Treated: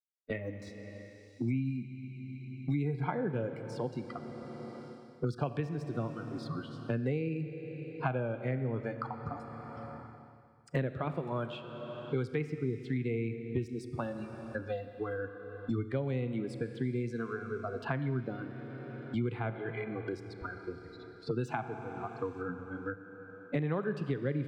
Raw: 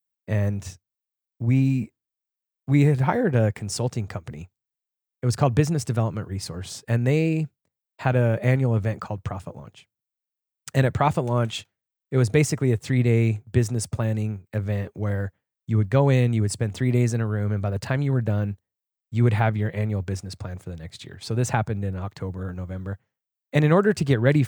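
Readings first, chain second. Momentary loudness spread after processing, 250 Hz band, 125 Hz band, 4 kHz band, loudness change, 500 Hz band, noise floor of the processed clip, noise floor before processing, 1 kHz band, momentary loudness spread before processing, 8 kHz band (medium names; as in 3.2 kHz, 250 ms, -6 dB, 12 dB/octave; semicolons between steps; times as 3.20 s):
11 LU, -10.5 dB, -15.0 dB, -15.5 dB, -13.0 dB, -10.0 dB, -53 dBFS, under -85 dBFS, -10.5 dB, 15 LU, under -25 dB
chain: gate -34 dBFS, range -16 dB; spectral noise reduction 24 dB; high-pass 170 Hz 6 dB/octave; treble shelf 4.5 kHz +10 dB; rotary cabinet horn 1.2 Hz; distance through air 420 m; Schroeder reverb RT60 2 s, combs from 27 ms, DRR 10.5 dB; three bands compressed up and down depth 100%; trim -6.5 dB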